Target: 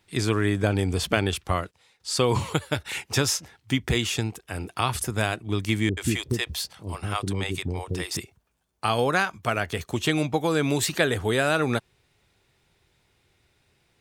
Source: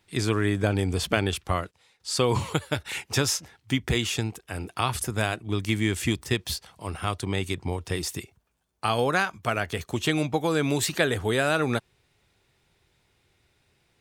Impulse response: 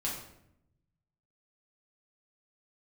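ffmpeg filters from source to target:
-filter_complex "[0:a]asettb=1/sr,asplit=3[a][b][c];[a]atrim=end=5.894[d];[b]atrim=start=5.89:end=8.17,asetpts=PTS-STARTPTS,afade=t=in:d=0.004:c=qsin,afade=t=out:st=2.276:d=0.004:c=qsin,acrossover=split=490[e][f];[f]adelay=80[g];[e][g]amix=inputs=2:normalize=0,atrim=end_sample=100548[h];[c]atrim=start=8.166[i];[d][h]acrossfade=d=0.004:c1=hsin:c2=qsin[j];[j][i]acrossfade=d=0.004:c1=qsin:c2=hsin,volume=1dB"

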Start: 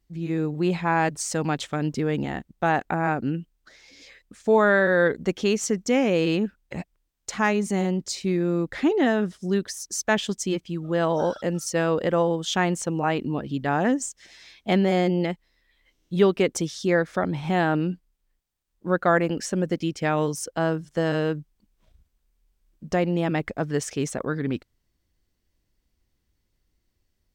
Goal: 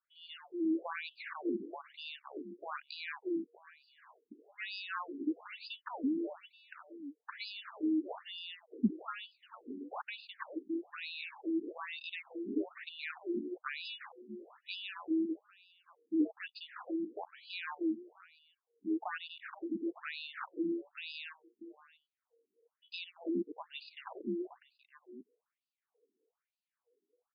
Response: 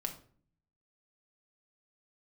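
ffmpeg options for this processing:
-filter_complex "[0:a]acrossover=split=310[a][b];[b]acompressor=threshold=-22dB:ratio=6[c];[a][c]amix=inputs=2:normalize=0,acrusher=samples=12:mix=1:aa=0.000001,afreqshift=-500,asplit=2[d][e];[e]adelay=641.4,volume=-15dB,highshelf=f=4k:g=-14.4[f];[d][f]amix=inputs=2:normalize=0,afftfilt=real='re*between(b*sr/1024,290*pow(3600/290,0.5+0.5*sin(2*PI*1.1*pts/sr))/1.41,290*pow(3600/290,0.5+0.5*sin(2*PI*1.1*pts/sr))*1.41)':imag='im*between(b*sr/1024,290*pow(3600/290,0.5+0.5*sin(2*PI*1.1*pts/sr))/1.41,290*pow(3600/290,0.5+0.5*sin(2*PI*1.1*pts/sr))*1.41)':win_size=1024:overlap=0.75,volume=-4.5dB"

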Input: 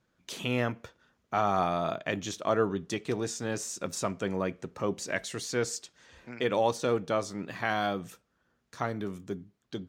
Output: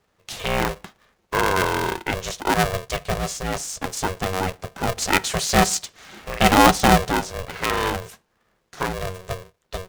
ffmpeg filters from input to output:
-filter_complex "[0:a]asettb=1/sr,asplit=3[a][b][c];[a]atrim=end=4.974[d];[b]atrim=start=4.97:end=7.1,asetpts=PTS-STARTPTS,afade=t=in:d=0.004:c=qsin,afade=t=out:st=2.126:d=0.004:c=qsin,acontrast=65[e];[c]atrim=start=7.096[f];[d][e]acrossfade=d=0.004:c1=hsin:c2=qsin[g];[g][f]acrossfade=d=0.004:c1=qsin:c2=hsin,aeval=exprs='val(0)*sgn(sin(2*PI*280*n/s))':c=same,volume=6.5dB"

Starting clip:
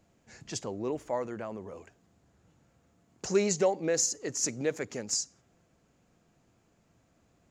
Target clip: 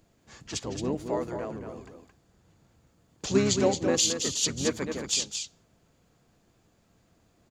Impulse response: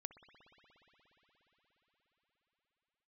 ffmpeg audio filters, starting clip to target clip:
-filter_complex "[0:a]highshelf=f=10k:g=7,asplit=3[a][b][c];[b]asetrate=22050,aresample=44100,atempo=2,volume=-7dB[d];[c]asetrate=29433,aresample=44100,atempo=1.49831,volume=-4dB[e];[a][d][e]amix=inputs=3:normalize=0,asplit=2[f][g];[g]aecho=0:1:221:0.447[h];[f][h]amix=inputs=2:normalize=0"

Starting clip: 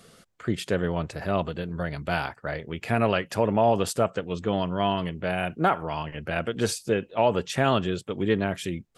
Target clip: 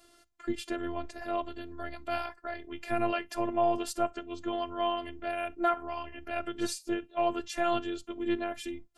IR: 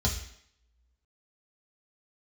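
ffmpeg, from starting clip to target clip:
-filter_complex "[0:a]asplit=2[a][b];[1:a]atrim=start_sample=2205,atrim=end_sample=3087[c];[b][c]afir=irnorm=-1:irlink=0,volume=-23dB[d];[a][d]amix=inputs=2:normalize=0,afftfilt=real='hypot(re,im)*cos(PI*b)':imag='0':win_size=512:overlap=0.75,volume=-3.5dB"

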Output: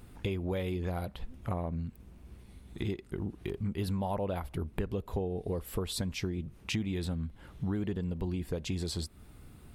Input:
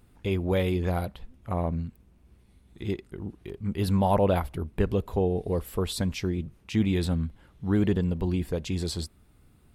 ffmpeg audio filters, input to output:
-af "acompressor=threshold=-38dB:ratio=6,volume=6.5dB"

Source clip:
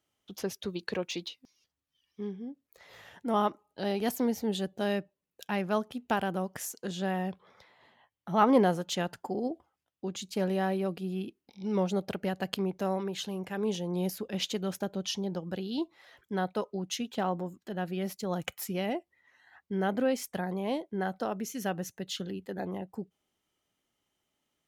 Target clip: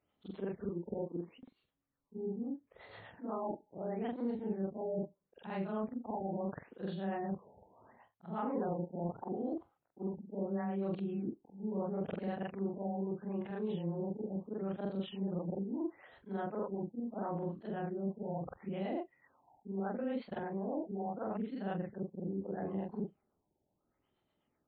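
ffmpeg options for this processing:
-filter_complex "[0:a]afftfilt=real='re':imag='-im':win_size=4096:overlap=0.75,areverse,acompressor=threshold=-44dB:ratio=4,areverse,equalizer=f=3.3k:w=0.49:g=-8.5,acrossover=split=500[a][b];[a]aeval=exprs='val(0)*(1-0.5/2+0.5/2*cos(2*PI*8.1*n/s))':c=same[c];[b]aeval=exprs='val(0)*(1-0.5/2-0.5/2*cos(2*PI*8.1*n/s))':c=same[d];[c][d]amix=inputs=2:normalize=0,afftfilt=real='re*lt(b*sr/1024,910*pow(4600/910,0.5+0.5*sin(2*PI*0.75*pts/sr)))':imag='im*lt(b*sr/1024,910*pow(4600/910,0.5+0.5*sin(2*PI*0.75*pts/sr)))':win_size=1024:overlap=0.75,volume=11dB"

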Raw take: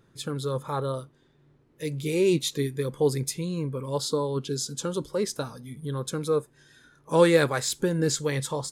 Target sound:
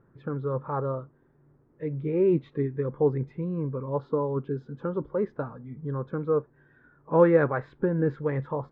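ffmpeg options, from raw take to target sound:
-af "lowpass=f=1.6k:w=0.5412,lowpass=f=1.6k:w=1.3066"

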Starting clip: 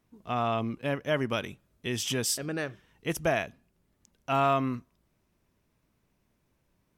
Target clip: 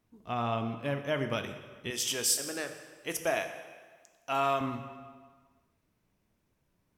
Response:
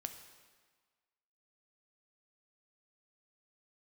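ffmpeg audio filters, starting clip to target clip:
-filter_complex "[0:a]asettb=1/sr,asplit=3[a][b][c];[a]atrim=end=1.904[d];[b]atrim=start=1.9:end=4.61,asetpts=PTS-STARTPTS,afade=t=in:d=0.004:c=qsin,afade=t=out:st=2.706:d=0.004:c=qsin,bass=f=250:g=-13,treble=f=4k:g=6[e];[c]atrim=start=4.606[f];[d][e]acrossfade=d=0.004:c1=hsin:c2=qsin[g];[g][f]acrossfade=d=0.004:c1=qsin:c2=hsin[h];[1:a]atrim=start_sample=2205[i];[h][i]afir=irnorm=-1:irlink=0"

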